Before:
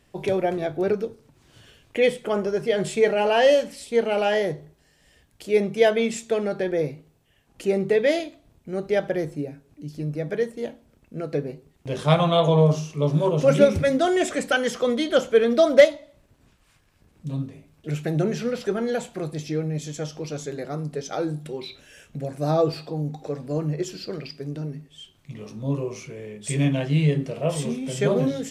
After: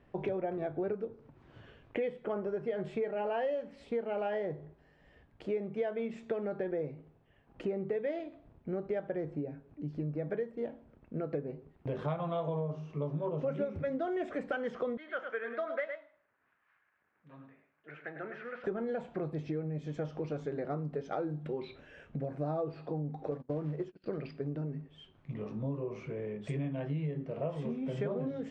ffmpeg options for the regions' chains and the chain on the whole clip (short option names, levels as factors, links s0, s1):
-filter_complex "[0:a]asettb=1/sr,asplit=3[s0][s1][s2];[s0]atrim=end=14.974[s3];[s1]atrim=start=14.97:end=18.64,asetpts=PTS-STARTPTS,afade=t=in:d=0.004:c=qsin,afade=t=out:st=3.666:d=0.004:c=qsin,bandpass=f=1700:t=q:w=2.2,aecho=1:1:104:0.376,atrim=end_sample=161847[s4];[s2]atrim=start=18.636[s5];[s3][s4]acrossfade=d=0.004:c1=hsin:c2=qsin[s6];[s6][s5]acrossfade=d=0.004:c1=qsin:c2=hsin,asettb=1/sr,asplit=3[s7][s8][s9];[s7]atrim=end=23.314[s10];[s8]atrim=start=23.31:end=24.06,asetpts=PTS-STARTPTS,afade=t=in:d=0.004:c=qsin,afade=t=out:st=0.746:d=0.004:c=qsin,agate=range=0.0316:threshold=0.0178:ratio=16:release=100:detection=peak,lowpass=f=3100:p=1,acrusher=bits=5:mode=log:mix=0:aa=0.000001[s11];[s9]atrim=start=24.056[s12];[s10][s11]acrossfade=d=0.004:c1=hsin:c2=qsin[s13];[s13][s12]acrossfade=d=0.004:c1=qsin:c2=hsin,lowpass=1600,acompressor=threshold=0.0251:ratio=6,lowshelf=f=150:g=-3"